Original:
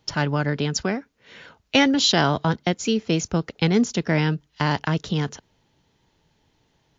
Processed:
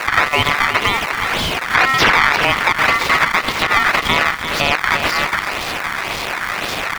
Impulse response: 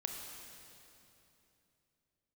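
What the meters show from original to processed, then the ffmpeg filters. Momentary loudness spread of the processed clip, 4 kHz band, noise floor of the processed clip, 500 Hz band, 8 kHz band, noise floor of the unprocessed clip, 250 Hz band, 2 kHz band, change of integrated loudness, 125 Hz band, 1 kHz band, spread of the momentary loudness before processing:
9 LU, +7.5 dB, -25 dBFS, +2.0 dB, n/a, -67 dBFS, -6.0 dB, +15.5 dB, +7.0 dB, -5.0 dB, +13.0 dB, 9 LU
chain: -filter_complex "[0:a]aeval=exprs='val(0)+0.5*0.0473*sgn(val(0))':c=same,highpass=530,acrusher=samples=22:mix=1:aa=0.000001:lfo=1:lforange=35.2:lforate=1.9,acrossover=split=3900[a][b];[b]acompressor=threshold=-42dB:ratio=4:attack=1:release=60[c];[a][c]amix=inputs=2:normalize=0,asplit=2[d][e];[e]aecho=0:1:343:0.251[f];[d][f]amix=inputs=2:normalize=0,aeval=exprs='val(0)*sin(2*PI*1600*n/s)':c=same,alimiter=level_in=17dB:limit=-1dB:release=50:level=0:latency=1,volume=-1dB"

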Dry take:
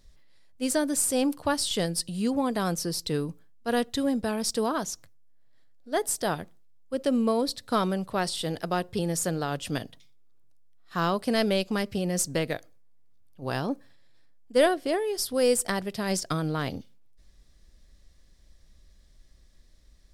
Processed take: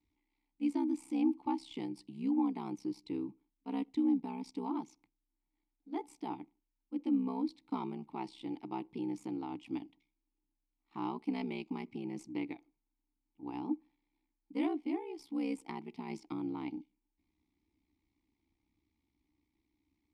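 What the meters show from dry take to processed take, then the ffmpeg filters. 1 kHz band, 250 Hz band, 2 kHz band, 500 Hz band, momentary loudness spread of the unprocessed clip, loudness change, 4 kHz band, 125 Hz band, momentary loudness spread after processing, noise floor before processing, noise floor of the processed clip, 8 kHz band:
-11.5 dB, -5.5 dB, -19.0 dB, -18.0 dB, 11 LU, -10.0 dB, -22.5 dB, -17.5 dB, 11 LU, -57 dBFS, under -85 dBFS, under -30 dB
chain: -filter_complex "[0:a]aeval=exprs='val(0)*sin(2*PI*32*n/s)':c=same,asplit=3[a][b][c];[a]bandpass=f=300:t=q:w=8,volume=0dB[d];[b]bandpass=f=870:t=q:w=8,volume=-6dB[e];[c]bandpass=f=2.24k:t=q:w=8,volume=-9dB[f];[d][e][f]amix=inputs=3:normalize=0,volume=4dB"

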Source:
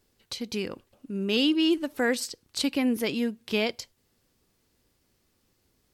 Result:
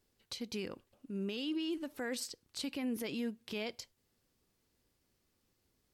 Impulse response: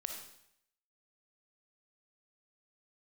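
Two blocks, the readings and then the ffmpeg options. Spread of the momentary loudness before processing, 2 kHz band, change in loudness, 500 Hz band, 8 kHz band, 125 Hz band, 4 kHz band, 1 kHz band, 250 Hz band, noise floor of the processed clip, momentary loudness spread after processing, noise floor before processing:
14 LU, -13.5 dB, -12.0 dB, -12.5 dB, -9.0 dB, -8.5 dB, -13.0 dB, -13.0 dB, -12.0 dB, -79 dBFS, 9 LU, -71 dBFS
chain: -af "alimiter=limit=-22dB:level=0:latency=1:release=30,volume=-7.5dB"

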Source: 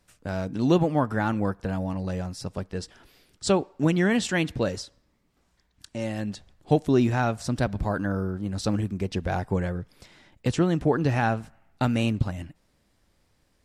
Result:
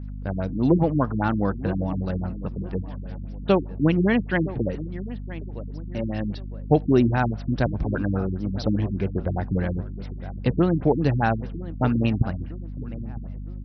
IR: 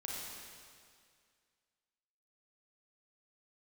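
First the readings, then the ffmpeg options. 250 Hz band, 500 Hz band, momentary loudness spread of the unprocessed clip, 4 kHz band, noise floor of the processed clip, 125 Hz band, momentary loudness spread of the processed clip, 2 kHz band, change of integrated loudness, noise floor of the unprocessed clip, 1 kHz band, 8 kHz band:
+2.5 dB, +1.5 dB, 13 LU, -5.0 dB, -34 dBFS, +3.0 dB, 15 LU, 0.0 dB, +1.5 dB, -68 dBFS, +1.0 dB, under -20 dB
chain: -filter_complex "[0:a]asplit=2[a][b];[b]adelay=959,lowpass=f=2k:p=1,volume=-15dB,asplit=2[c][d];[d]adelay=959,lowpass=f=2k:p=1,volume=0.4,asplit=2[e][f];[f]adelay=959,lowpass=f=2k:p=1,volume=0.4,asplit=2[g][h];[h]adelay=959,lowpass=f=2k:p=1,volume=0.4[i];[a][c][e][g][i]amix=inputs=5:normalize=0,aeval=exprs='val(0)+0.0178*(sin(2*PI*50*n/s)+sin(2*PI*2*50*n/s)/2+sin(2*PI*3*50*n/s)/3+sin(2*PI*4*50*n/s)/4+sin(2*PI*5*50*n/s)/5)':c=same,afftfilt=real='re*lt(b*sr/1024,320*pow(6100/320,0.5+0.5*sin(2*PI*4.9*pts/sr)))':imag='im*lt(b*sr/1024,320*pow(6100/320,0.5+0.5*sin(2*PI*4.9*pts/sr)))':win_size=1024:overlap=0.75,volume=2.5dB"

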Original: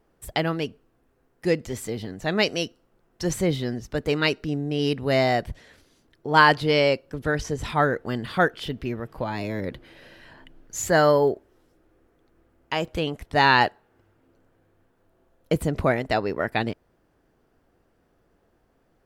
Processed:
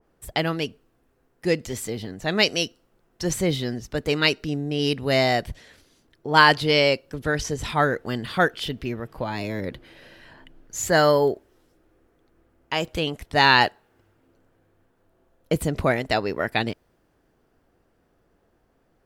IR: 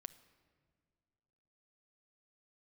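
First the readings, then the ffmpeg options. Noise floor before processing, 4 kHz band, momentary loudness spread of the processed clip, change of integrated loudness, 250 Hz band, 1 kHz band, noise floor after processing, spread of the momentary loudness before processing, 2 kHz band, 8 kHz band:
-67 dBFS, +5.0 dB, 14 LU, +1.0 dB, 0.0 dB, 0.0 dB, -66 dBFS, 14 LU, +2.0 dB, +3.0 dB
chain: -af "adynamicequalizer=threshold=0.0158:dfrequency=2200:dqfactor=0.7:tfrequency=2200:tqfactor=0.7:attack=5:release=100:ratio=0.375:range=3:mode=boostabove:tftype=highshelf"

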